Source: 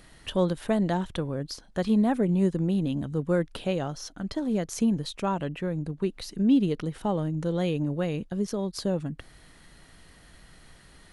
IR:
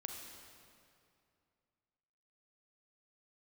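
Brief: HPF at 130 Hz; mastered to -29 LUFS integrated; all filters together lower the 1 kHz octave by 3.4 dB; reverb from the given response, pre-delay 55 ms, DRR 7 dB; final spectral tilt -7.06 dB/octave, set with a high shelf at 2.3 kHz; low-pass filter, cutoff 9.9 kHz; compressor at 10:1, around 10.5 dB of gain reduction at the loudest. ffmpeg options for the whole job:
-filter_complex "[0:a]highpass=130,lowpass=9900,equalizer=f=1000:t=o:g=-3.5,highshelf=f=2300:g=-6.5,acompressor=threshold=0.0398:ratio=10,asplit=2[s0][s1];[1:a]atrim=start_sample=2205,adelay=55[s2];[s1][s2]afir=irnorm=-1:irlink=0,volume=0.562[s3];[s0][s3]amix=inputs=2:normalize=0,volume=1.68"

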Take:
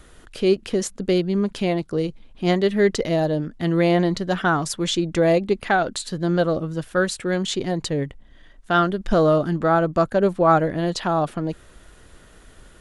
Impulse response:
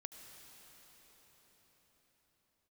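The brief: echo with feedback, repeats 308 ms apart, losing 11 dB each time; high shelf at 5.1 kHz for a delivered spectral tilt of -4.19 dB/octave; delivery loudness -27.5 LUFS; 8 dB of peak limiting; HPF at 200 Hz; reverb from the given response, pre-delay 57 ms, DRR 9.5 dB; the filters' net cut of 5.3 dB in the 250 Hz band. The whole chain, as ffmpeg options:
-filter_complex "[0:a]highpass=200,equalizer=f=250:t=o:g=-6,highshelf=f=5100:g=-8.5,alimiter=limit=0.224:level=0:latency=1,aecho=1:1:308|616|924:0.282|0.0789|0.0221,asplit=2[s0][s1];[1:a]atrim=start_sample=2205,adelay=57[s2];[s1][s2]afir=irnorm=-1:irlink=0,volume=0.562[s3];[s0][s3]amix=inputs=2:normalize=0,volume=0.75"

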